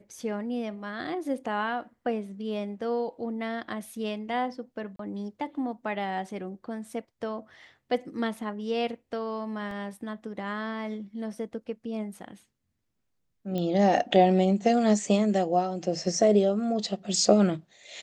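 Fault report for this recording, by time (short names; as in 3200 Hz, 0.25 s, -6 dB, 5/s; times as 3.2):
4.96–4.99 gap 33 ms
9.71 gap 2.4 ms
13.58 pop -20 dBFS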